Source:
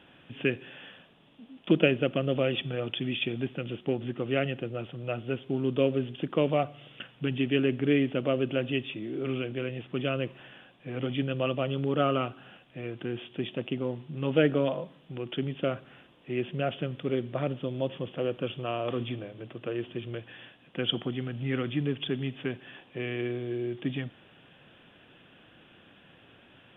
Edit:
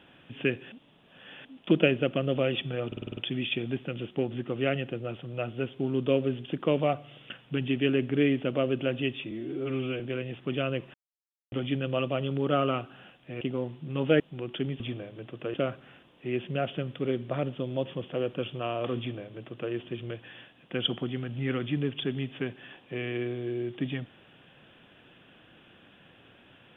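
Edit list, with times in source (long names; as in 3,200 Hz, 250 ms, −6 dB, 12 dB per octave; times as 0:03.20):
0:00.72–0:01.45: reverse
0:02.87: stutter 0.05 s, 7 plays
0:09.01–0:09.47: time-stretch 1.5×
0:10.41–0:10.99: silence
0:12.88–0:13.68: remove
0:14.47–0:14.98: remove
0:19.02–0:19.76: duplicate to 0:15.58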